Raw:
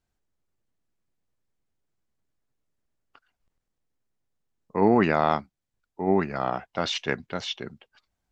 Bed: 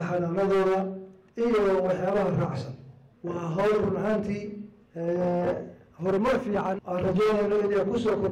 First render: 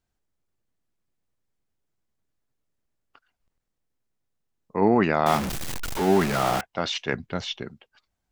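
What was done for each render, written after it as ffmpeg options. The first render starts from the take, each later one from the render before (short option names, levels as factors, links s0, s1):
-filter_complex "[0:a]asettb=1/sr,asplit=3[s0][s1][s2];[s0]atrim=end=5.264[s3];[s1]atrim=start=5.26:end=6.61,asetpts=PTS-STARTPTS,afade=t=in:d=0.004:c=qsin,afade=t=out:st=1.346:d=0.004:c=qsin,aeval=exprs='val(0)+0.5*0.075*sgn(val(0))':c=same[s4];[s2]atrim=start=6.606[s5];[s3][s4]acrossfade=d=0.004:c1=hsin:c2=qsin[s6];[s6][s5]acrossfade=d=0.004:c1=qsin:c2=hsin,asettb=1/sr,asplit=3[s7][s8][s9];[s7]atrim=end=7.134[s10];[s8]atrim=start=7.13:end=7.63,asetpts=PTS-STARTPTS,afade=t=in:d=0.004:c=qsin,afade=t=out:st=0.496:d=0.004:c=qsin,lowshelf=f=170:g=10[s11];[s9]atrim=start=7.626[s12];[s10][s11]acrossfade=d=0.004:c1=hsin:c2=qsin[s13];[s13][s12]acrossfade=d=0.004:c1=qsin:c2=hsin"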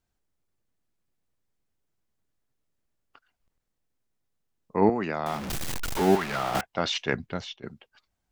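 -filter_complex "[0:a]asettb=1/sr,asplit=3[s0][s1][s2];[s0]atrim=end=4.894[s3];[s1]atrim=start=4.89:end=5.5,asetpts=PTS-STARTPTS,afade=t=in:d=0.004:c=qsin,afade=t=out:st=0.606:d=0.004:c=qsin,acrossover=split=170|5900[s4][s5][s6];[s4]acompressor=threshold=0.00631:ratio=4[s7];[s5]acompressor=threshold=0.0447:ratio=4[s8];[s6]acompressor=threshold=0.00224:ratio=4[s9];[s7][s8][s9]amix=inputs=3:normalize=0[s10];[s2]atrim=start=5.496[s11];[s3][s10]acrossfade=d=0.004:c1=hsin:c2=qsin[s12];[s12][s11]acrossfade=d=0.004:c1=qsin:c2=hsin,asettb=1/sr,asplit=3[s13][s14][s15];[s13]atrim=end=6.154[s16];[s14]atrim=start=6.15:end=6.55,asetpts=PTS-STARTPTS,afade=t=in:d=0.004:c=qsin,afade=t=out:st=0.396:d=0.004:c=qsin,acrossover=split=710|4900[s17][s18][s19];[s17]acompressor=threshold=0.02:ratio=4[s20];[s18]acompressor=threshold=0.0398:ratio=4[s21];[s19]acompressor=threshold=0.00355:ratio=4[s22];[s20][s21][s22]amix=inputs=3:normalize=0[s23];[s15]atrim=start=6.546[s24];[s16][s23]acrossfade=d=0.004:c1=hsin:c2=qsin[s25];[s25][s24]acrossfade=d=0.004:c1=qsin:c2=hsin,asplit=2[s26][s27];[s26]atrim=end=7.63,asetpts=PTS-STARTPTS,afade=t=out:st=7.22:d=0.41:silence=0.125893[s28];[s27]atrim=start=7.63,asetpts=PTS-STARTPTS,afade=t=in:d=0.004:c=hsin:silence=0.125893[s29];[s28][s29]concat=n=2:v=0:a=1"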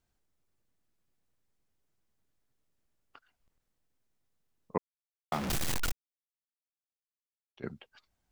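-filter_complex "[0:a]asplit=5[s0][s1][s2][s3][s4];[s0]atrim=end=4.78,asetpts=PTS-STARTPTS,afade=t=out:st=4.776:d=0.004:c=hsin[s5];[s1]atrim=start=4.78:end=5.32,asetpts=PTS-STARTPTS,volume=0[s6];[s2]atrim=start=5.32:end=5.92,asetpts=PTS-STARTPTS,afade=t=in:d=0.004:c=hsin,afade=t=out:st=0.596:d=0.004:c=hsin[s7];[s3]atrim=start=5.92:end=7.57,asetpts=PTS-STARTPTS,volume=0[s8];[s4]atrim=start=7.57,asetpts=PTS-STARTPTS,afade=t=in:d=0.004:c=hsin[s9];[s5][s6][s7][s8][s9]concat=n=5:v=0:a=1"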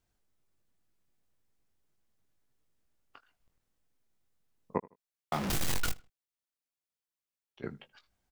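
-filter_complex "[0:a]asplit=2[s0][s1];[s1]adelay=20,volume=0.355[s2];[s0][s2]amix=inputs=2:normalize=0,asplit=2[s3][s4];[s4]adelay=79,lowpass=f=4200:p=1,volume=0.075,asplit=2[s5][s6];[s6]adelay=79,lowpass=f=4200:p=1,volume=0.29[s7];[s3][s5][s7]amix=inputs=3:normalize=0"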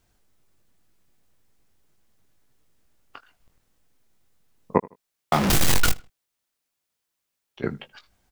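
-af "volume=3.98"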